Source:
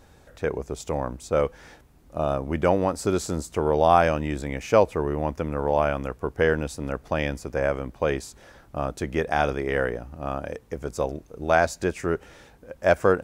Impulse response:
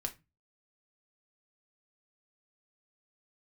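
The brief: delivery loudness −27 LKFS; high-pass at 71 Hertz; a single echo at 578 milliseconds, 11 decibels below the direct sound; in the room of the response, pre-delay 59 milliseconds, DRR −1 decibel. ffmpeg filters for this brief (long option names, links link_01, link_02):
-filter_complex "[0:a]highpass=71,aecho=1:1:578:0.282,asplit=2[link_01][link_02];[1:a]atrim=start_sample=2205,adelay=59[link_03];[link_02][link_03]afir=irnorm=-1:irlink=0,volume=1dB[link_04];[link_01][link_04]amix=inputs=2:normalize=0,volume=-5.5dB"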